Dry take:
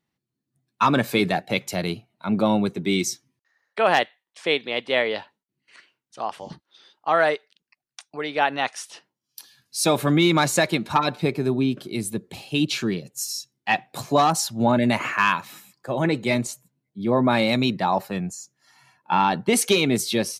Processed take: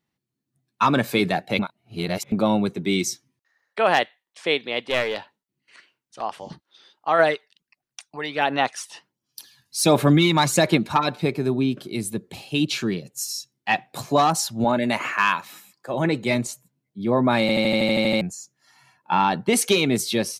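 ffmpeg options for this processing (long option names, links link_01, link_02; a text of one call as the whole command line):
ffmpeg -i in.wav -filter_complex "[0:a]asettb=1/sr,asplit=3[link_01][link_02][link_03];[link_01]atrim=end=4.894[link_04];[link_02]atrim=start=4.89:end=6.22,asetpts=PTS-STARTPTS,afade=type=in:duration=0.004:curve=qsin,afade=type=out:start_time=1.326:duration=0.004:curve=qsin,aeval=exprs='clip(val(0),-1,0.0668)':channel_layout=same[link_05];[link_03]atrim=start=6.216[link_06];[link_04][link_05]acrossfade=duration=0.004:curve1=hsin:curve2=qsin[link_07];[link_07][link_06]acrossfade=duration=0.004:curve1=qsin:curve2=hsin,asplit=3[link_08][link_09][link_10];[link_08]afade=type=out:start_time=7.18:duration=0.02[link_11];[link_09]aphaser=in_gain=1:out_gain=1:delay=1.1:decay=0.46:speed=1.4:type=sinusoidal,afade=type=in:start_time=7.18:duration=0.02,afade=type=out:start_time=10.86:duration=0.02[link_12];[link_10]afade=type=in:start_time=10.86:duration=0.02[link_13];[link_11][link_12][link_13]amix=inputs=3:normalize=0,asettb=1/sr,asplit=3[link_14][link_15][link_16];[link_14]atrim=end=14.644[link_17];[link_15]atrim=start=14.64:end=15.94,asetpts=PTS-STARTPTS,afade=type=in:duration=0.004:curve=qsin,afade=type=out:start_time=1.296:duration=0.004:curve=qsin,highpass=frequency=270:poles=1[link_18];[link_16]atrim=start=15.936[link_19];[link_17][link_18]acrossfade=duration=0.004:curve1=hsin:curve2=qsin[link_20];[link_20][link_19]acrossfade=duration=0.004:curve1=qsin:curve2=hsin,asplit=13[link_21][link_22][link_23][link_24][link_25][link_26][link_27][link_28][link_29][link_30][link_31][link_32][link_33];[link_21]atrim=end=1.592[link_34];[link_22]atrim=start=1.588:end=2.322,asetpts=PTS-STARTPTS,areverse[link_35];[link_23]atrim=start=2.318:end=17.492[link_36];[link_24]atrim=start=17.408:end=17.492[link_37];[link_25]atrim=start=17.408:end=17.492[link_38];[link_26]atrim=start=17.408:end=17.492[link_39];[link_27]atrim=start=17.408:end=17.492[link_40];[link_28]atrim=start=17.408:end=17.492[link_41];[link_29]atrim=start=17.408:end=17.492[link_42];[link_30]atrim=start=17.408:end=17.492[link_43];[link_31]atrim=start=17.408:end=17.492[link_44];[link_32]atrim=start=17.408:end=17.492[link_45];[link_33]atrim=start=18.208[link_46];[link_34][link_35]acrossfade=duration=0.004:curve1=hsin:curve2=hsin[link_47];[link_47][link_36]acrossfade=duration=0.004:curve1=hsin:curve2=hsin[link_48];[link_48][link_37]acrossfade=duration=0.004:curve1=hsin:curve2=hsin[link_49];[link_49][link_38]acrossfade=duration=0.004:curve1=hsin:curve2=hsin[link_50];[link_50][link_39]acrossfade=duration=0.004:curve1=hsin:curve2=hsin[link_51];[link_51][link_40]acrossfade=duration=0.004:curve1=hsin:curve2=hsin[link_52];[link_52][link_41]acrossfade=duration=0.004:curve1=hsin:curve2=hsin[link_53];[link_53][link_42]acrossfade=duration=0.004:curve1=hsin:curve2=hsin[link_54];[link_54][link_43]acrossfade=duration=0.004:curve1=hsin:curve2=hsin[link_55];[link_55][link_44]acrossfade=duration=0.004:curve1=hsin:curve2=hsin[link_56];[link_56][link_45]acrossfade=duration=0.004:curve1=hsin:curve2=hsin[link_57];[link_57][link_46]acrossfade=duration=0.004:curve1=hsin:curve2=hsin" out.wav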